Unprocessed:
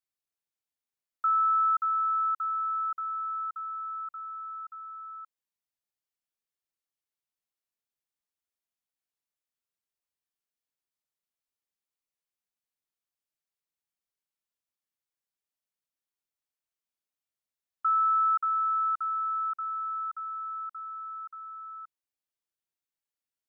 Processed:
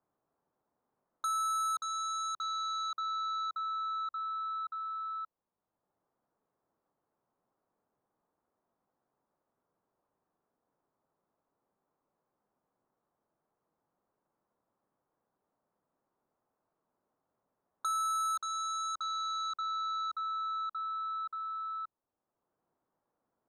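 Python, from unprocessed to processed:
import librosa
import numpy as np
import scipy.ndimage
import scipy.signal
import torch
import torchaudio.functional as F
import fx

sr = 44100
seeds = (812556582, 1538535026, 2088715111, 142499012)

p1 = scipy.signal.sosfilt(scipy.signal.butter(4, 1100.0, 'lowpass', fs=sr, output='sos'), x)
p2 = fx.fold_sine(p1, sr, drive_db=14, ceiling_db=-27.5)
p3 = p1 + F.gain(torch.from_numpy(p2), -12.0).numpy()
y = fx.band_squash(p3, sr, depth_pct=40)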